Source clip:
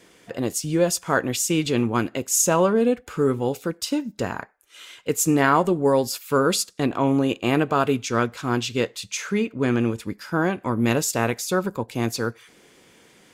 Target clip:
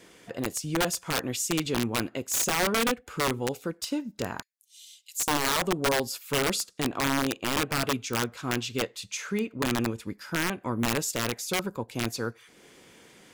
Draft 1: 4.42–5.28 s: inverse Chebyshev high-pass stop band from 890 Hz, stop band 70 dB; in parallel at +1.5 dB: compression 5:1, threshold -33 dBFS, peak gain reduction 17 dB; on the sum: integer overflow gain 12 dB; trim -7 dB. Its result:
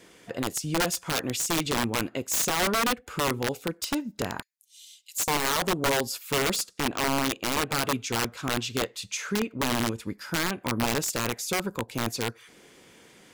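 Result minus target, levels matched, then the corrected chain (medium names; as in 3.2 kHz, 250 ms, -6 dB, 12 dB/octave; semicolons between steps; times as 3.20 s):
compression: peak gain reduction -8 dB
4.42–5.28 s: inverse Chebyshev high-pass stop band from 890 Hz, stop band 70 dB; in parallel at +1.5 dB: compression 5:1, threshold -43 dBFS, peak gain reduction 25 dB; on the sum: integer overflow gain 12 dB; trim -7 dB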